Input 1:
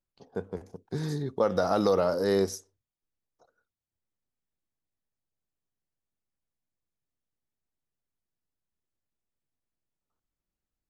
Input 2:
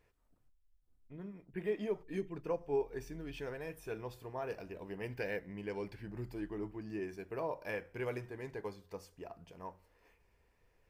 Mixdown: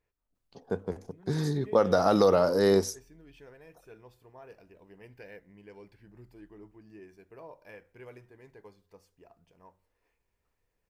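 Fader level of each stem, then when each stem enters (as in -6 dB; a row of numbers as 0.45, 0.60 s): +2.5, -9.5 dB; 0.35, 0.00 s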